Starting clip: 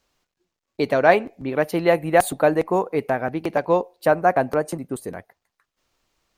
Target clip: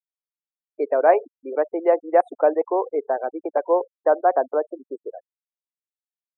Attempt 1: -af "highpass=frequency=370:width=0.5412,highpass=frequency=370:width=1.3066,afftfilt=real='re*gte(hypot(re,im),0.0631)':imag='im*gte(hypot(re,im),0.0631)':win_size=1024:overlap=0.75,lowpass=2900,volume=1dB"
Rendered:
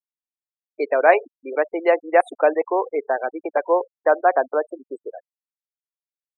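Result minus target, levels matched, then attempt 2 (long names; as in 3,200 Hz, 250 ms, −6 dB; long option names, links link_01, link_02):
4,000 Hz band +15.5 dB
-af "highpass=frequency=370:width=0.5412,highpass=frequency=370:width=1.3066,afftfilt=real='re*gte(hypot(re,im),0.0631)':imag='im*gte(hypot(re,im),0.0631)':win_size=1024:overlap=0.75,lowpass=970,volume=1dB"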